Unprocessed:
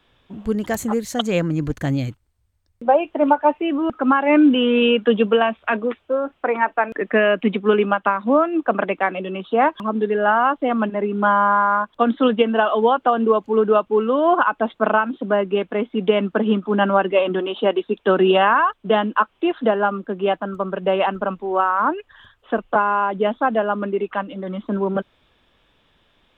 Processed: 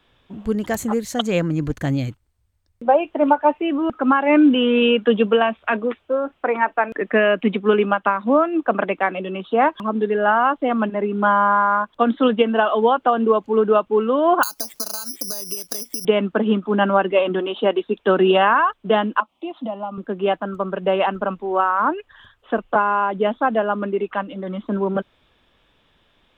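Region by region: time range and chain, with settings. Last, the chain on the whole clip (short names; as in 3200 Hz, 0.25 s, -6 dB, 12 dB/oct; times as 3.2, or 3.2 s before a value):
14.43–16.05 careless resampling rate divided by 8×, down none, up zero stuff + compressor 16:1, threshold -21 dBFS
19.2–19.98 HPF 82 Hz + compressor 2:1, threshold -26 dBFS + fixed phaser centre 430 Hz, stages 6
whole clip: dry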